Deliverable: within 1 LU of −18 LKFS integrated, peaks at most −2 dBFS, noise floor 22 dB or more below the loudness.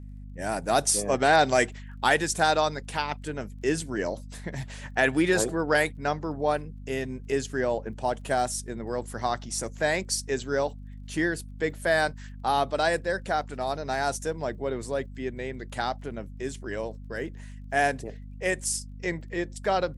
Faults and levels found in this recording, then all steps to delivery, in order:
crackle rate 21 per second; mains hum 50 Hz; hum harmonics up to 250 Hz; level of the hum −39 dBFS; integrated loudness −28.0 LKFS; sample peak −7.5 dBFS; target loudness −18.0 LKFS
→ click removal
mains-hum notches 50/100/150/200/250 Hz
level +10 dB
brickwall limiter −2 dBFS

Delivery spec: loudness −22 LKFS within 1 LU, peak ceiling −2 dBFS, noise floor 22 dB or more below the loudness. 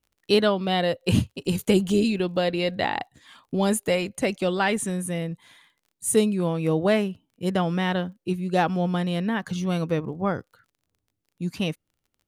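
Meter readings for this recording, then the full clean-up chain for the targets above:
crackle rate 29 per second; integrated loudness −25.0 LKFS; sample peak −8.0 dBFS; target loudness −22.0 LKFS
→ click removal
level +3 dB

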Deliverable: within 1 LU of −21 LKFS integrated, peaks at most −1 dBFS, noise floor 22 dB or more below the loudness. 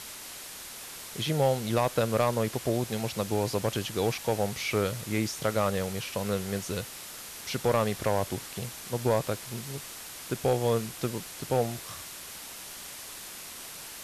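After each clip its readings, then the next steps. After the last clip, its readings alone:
share of clipped samples 0.3%; peaks flattened at −17.0 dBFS; background noise floor −43 dBFS; target noise floor −53 dBFS; integrated loudness −31.0 LKFS; sample peak −17.0 dBFS; target loudness −21.0 LKFS
→ clipped peaks rebuilt −17 dBFS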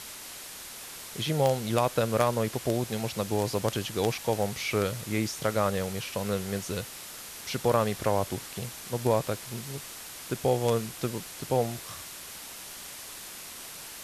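share of clipped samples 0.0%; background noise floor −43 dBFS; target noise floor −53 dBFS
→ broadband denoise 10 dB, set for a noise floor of −43 dBFS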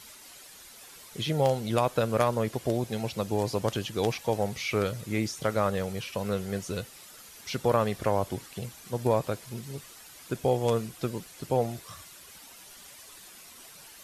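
background noise floor −50 dBFS; target noise floor −52 dBFS
→ broadband denoise 6 dB, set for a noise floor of −50 dBFS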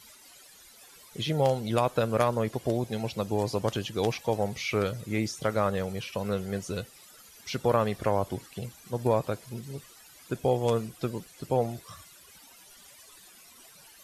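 background noise floor −54 dBFS; integrated loudness −29.5 LKFS; sample peak −8.5 dBFS; target loudness −21.0 LKFS
→ level +8.5 dB
brickwall limiter −1 dBFS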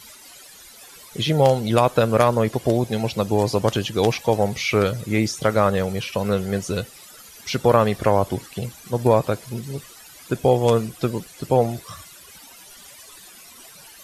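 integrated loudness −21.0 LKFS; sample peak −1.0 dBFS; background noise floor −45 dBFS

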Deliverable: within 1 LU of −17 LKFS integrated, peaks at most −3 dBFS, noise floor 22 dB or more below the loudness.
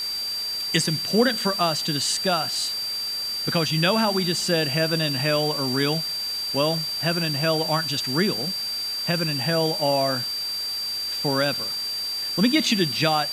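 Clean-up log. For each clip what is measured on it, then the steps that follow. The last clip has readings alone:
interfering tone 4,700 Hz; level of the tone −26 dBFS; background noise floor −29 dBFS; target noise floor −45 dBFS; integrated loudness −22.5 LKFS; sample peak −5.5 dBFS; target loudness −17.0 LKFS
→ notch filter 4,700 Hz, Q 30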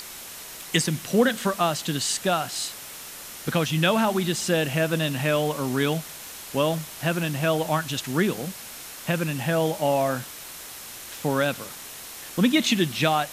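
interfering tone none found; background noise floor −40 dBFS; target noise floor −47 dBFS
→ noise reduction from a noise print 7 dB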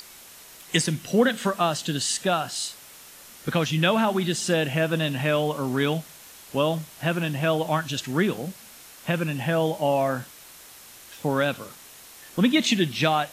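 background noise floor −47 dBFS; integrated loudness −24.5 LKFS; sample peak −5.5 dBFS; target loudness −17.0 LKFS
→ level +7.5 dB
brickwall limiter −3 dBFS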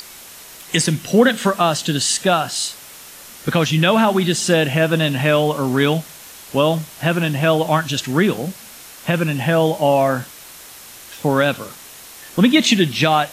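integrated loudness −17.5 LKFS; sample peak −3.0 dBFS; background noise floor −40 dBFS

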